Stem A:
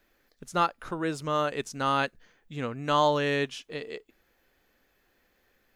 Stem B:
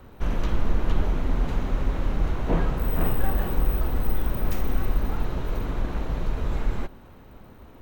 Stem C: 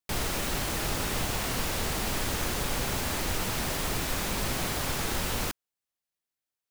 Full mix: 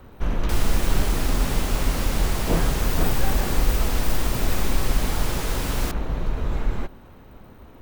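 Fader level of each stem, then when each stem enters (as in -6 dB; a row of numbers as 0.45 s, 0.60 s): mute, +1.5 dB, 0.0 dB; mute, 0.00 s, 0.40 s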